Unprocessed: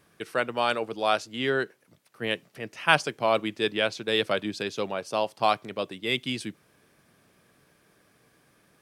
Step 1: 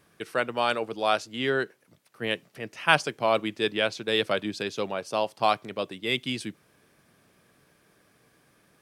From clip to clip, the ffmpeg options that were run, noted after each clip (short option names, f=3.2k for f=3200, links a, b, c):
-af anull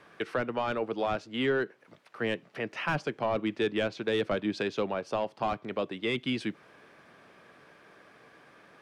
-filter_complex "[0:a]highshelf=f=7.7k:g=-12,asplit=2[a][b];[b]highpass=f=720:p=1,volume=18dB,asoftclip=type=tanh:threshold=-4dB[c];[a][c]amix=inputs=2:normalize=0,lowpass=f=1.8k:p=1,volume=-6dB,acrossover=split=320[d][e];[e]acompressor=threshold=-34dB:ratio=3[f];[d][f]amix=inputs=2:normalize=0"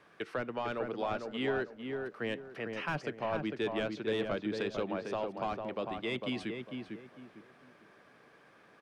-filter_complex "[0:a]asplit=2[a][b];[b]adelay=451,lowpass=f=1.7k:p=1,volume=-4.5dB,asplit=2[c][d];[d]adelay=451,lowpass=f=1.7k:p=1,volume=0.31,asplit=2[e][f];[f]adelay=451,lowpass=f=1.7k:p=1,volume=0.31,asplit=2[g][h];[h]adelay=451,lowpass=f=1.7k:p=1,volume=0.31[i];[a][c][e][g][i]amix=inputs=5:normalize=0,volume=-5.5dB"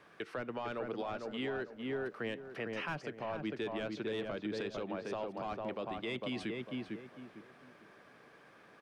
-af "alimiter=level_in=6dB:limit=-24dB:level=0:latency=1:release=175,volume=-6dB,volume=1dB"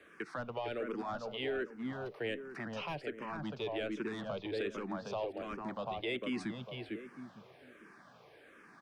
-filter_complex "[0:a]acrossover=split=120|1100|2500[a][b][c][d];[b]volume=33.5dB,asoftclip=hard,volume=-33.5dB[e];[a][e][c][d]amix=inputs=4:normalize=0,asplit=2[f][g];[g]afreqshift=-1.3[h];[f][h]amix=inputs=2:normalize=1,volume=3.5dB"